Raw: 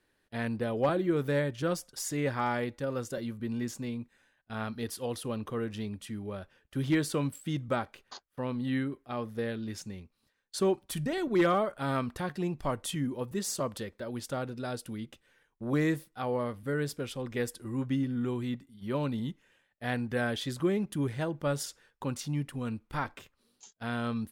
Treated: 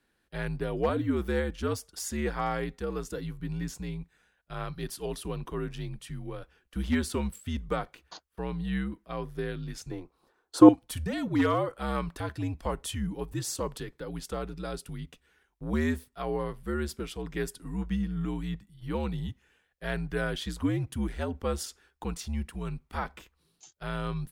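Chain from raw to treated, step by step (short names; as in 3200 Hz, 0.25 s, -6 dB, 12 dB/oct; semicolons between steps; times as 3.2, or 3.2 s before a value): frequency shift -72 Hz; 9.91–10.69 band shelf 590 Hz +15 dB 2.7 oct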